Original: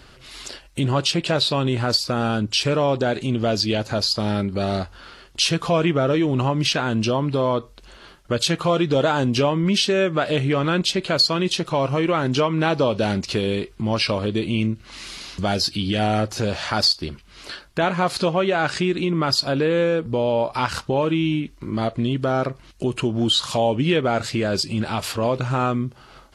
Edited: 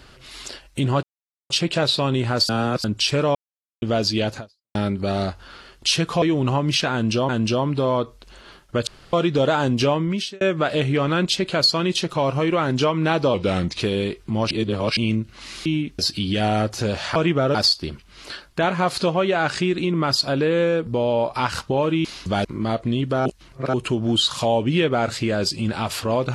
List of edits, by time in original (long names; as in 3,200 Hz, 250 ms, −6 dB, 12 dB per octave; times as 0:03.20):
0:01.03: splice in silence 0.47 s
0:02.02–0:02.37: reverse
0:02.88–0:03.35: silence
0:03.90–0:04.28: fade out exponential
0:05.75–0:06.14: move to 0:16.74
0:06.85–0:07.21: repeat, 2 plays
0:08.43–0:08.69: fill with room tone
0:09.52–0:09.97: fade out
0:12.90–0:13.32: play speed 90%
0:14.02–0:14.48: reverse
0:15.17–0:15.57: swap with 0:21.24–0:21.57
0:22.38–0:22.86: reverse